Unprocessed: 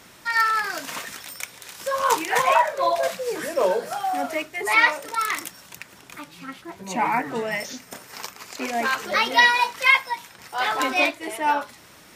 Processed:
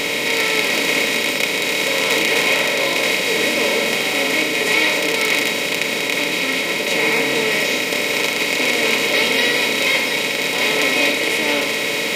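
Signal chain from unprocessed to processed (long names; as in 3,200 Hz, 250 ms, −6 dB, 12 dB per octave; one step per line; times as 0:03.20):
compressor on every frequency bin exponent 0.2
flat-topped bell 1,100 Hz −14.5 dB
on a send: convolution reverb RT60 0.70 s, pre-delay 7 ms, DRR 4 dB
on the sum: level −3.5 dB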